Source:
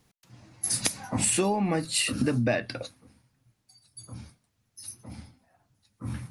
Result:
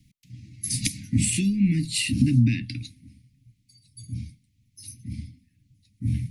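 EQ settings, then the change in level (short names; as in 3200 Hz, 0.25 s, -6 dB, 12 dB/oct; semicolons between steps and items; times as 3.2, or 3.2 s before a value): Chebyshev band-stop 290–2100 Hz, order 4; tone controls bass +8 dB, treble -3 dB; +2.5 dB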